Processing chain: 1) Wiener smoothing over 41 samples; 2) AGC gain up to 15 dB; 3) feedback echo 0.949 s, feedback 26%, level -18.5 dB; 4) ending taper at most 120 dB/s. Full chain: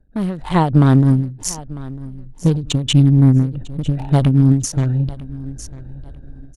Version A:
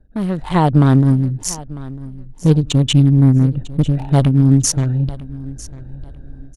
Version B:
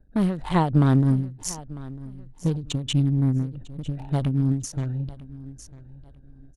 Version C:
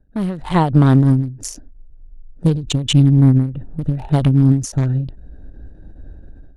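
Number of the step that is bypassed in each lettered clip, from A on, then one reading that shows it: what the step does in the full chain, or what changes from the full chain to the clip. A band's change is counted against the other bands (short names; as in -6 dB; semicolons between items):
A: 4, 8 kHz band +3.0 dB; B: 2, crest factor change +2.0 dB; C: 3, momentary loudness spread change -6 LU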